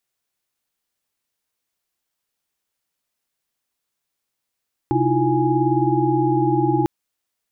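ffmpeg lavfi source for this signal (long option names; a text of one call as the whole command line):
ffmpeg -f lavfi -i "aevalsrc='0.0794*(sin(2*PI*130.81*t)+sin(2*PI*311.13*t)+sin(2*PI*329.63*t)+sin(2*PI*349.23*t)+sin(2*PI*830.61*t))':duration=1.95:sample_rate=44100" out.wav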